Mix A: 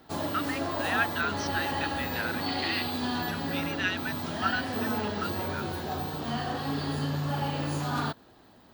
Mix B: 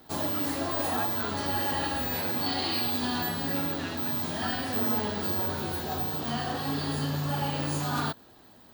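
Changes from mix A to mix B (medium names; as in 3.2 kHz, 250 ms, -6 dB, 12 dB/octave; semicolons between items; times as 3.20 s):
speech -12.0 dB; background: add treble shelf 6.1 kHz +8.5 dB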